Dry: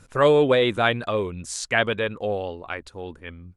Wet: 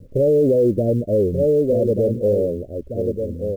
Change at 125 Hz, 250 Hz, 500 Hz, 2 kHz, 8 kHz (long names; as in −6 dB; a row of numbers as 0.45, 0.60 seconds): +8.0 dB, +7.5 dB, +5.5 dB, below −35 dB, below −15 dB